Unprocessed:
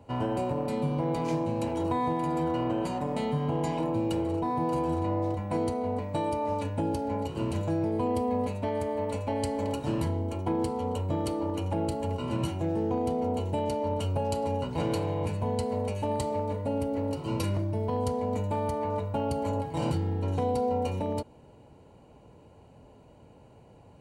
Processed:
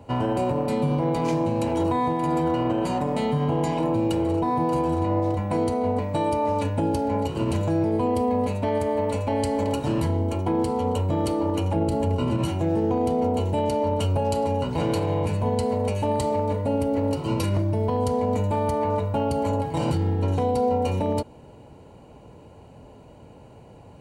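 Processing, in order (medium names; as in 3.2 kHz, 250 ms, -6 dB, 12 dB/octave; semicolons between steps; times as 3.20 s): 11.76–12.38 s: bass shelf 460 Hz +6 dB; peak limiter -22.5 dBFS, peak gain reduction 7.5 dB; trim +7 dB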